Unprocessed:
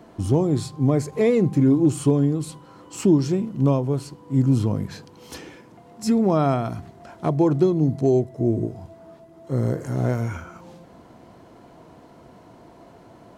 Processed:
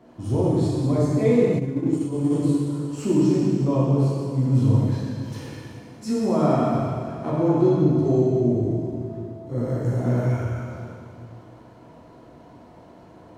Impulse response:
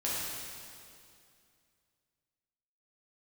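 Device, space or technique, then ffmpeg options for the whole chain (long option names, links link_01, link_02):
swimming-pool hall: -filter_complex "[1:a]atrim=start_sample=2205[link_01];[0:a][link_01]afir=irnorm=-1:irlink=0,highshelf=frequency=5600:gain=-6,asplit=3[link_02][link_03][link_04];[link_02]afade=type=out:start_time=1.58:duration=0.02[link_05];[link_03]agate=range=-33dB:threshold=-4dB:ratio=3:detection=peak,afade=type=in:start_time=1.58:duration=0.02,afade=type=out:start_time=2.3:duration=0.02[link_06];[link_04]afade=type=in:start_time=2.3:duration=0.02[link_07];[link_05][link_06][link_07]amix=inputs=3:normalize=0,volume=-6.5dB"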